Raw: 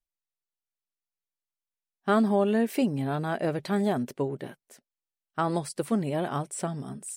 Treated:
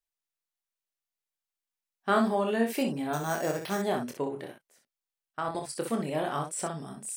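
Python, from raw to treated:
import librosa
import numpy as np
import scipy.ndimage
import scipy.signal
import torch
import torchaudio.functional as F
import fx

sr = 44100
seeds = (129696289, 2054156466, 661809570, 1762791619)

p1 = fx.low_shelf(x, sr, hz=320.0, db=-9.5)
p2 = fx.level_steps(p1, sr, step_db=16, at=(4.45, 5.69))
p3 = p2 + fx.room_early_taps(p2, sr, ms=(26, 62), db=(-5.5, -6.5), dry=0)
y = fx.resample_bad(p3, sr, factor=6, down='none', up='hold', at=(3.13, 3.82))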